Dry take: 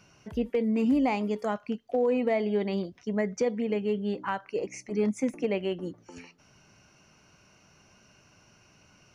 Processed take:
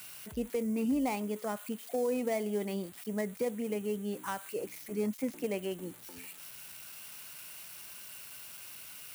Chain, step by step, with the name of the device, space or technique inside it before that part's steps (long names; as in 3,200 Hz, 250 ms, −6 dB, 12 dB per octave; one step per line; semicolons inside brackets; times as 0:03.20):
budget class-D amplifier (gap after every zero crossing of 0.084 ms; spike at every zero crossing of −27 dBFS)
level −6 dB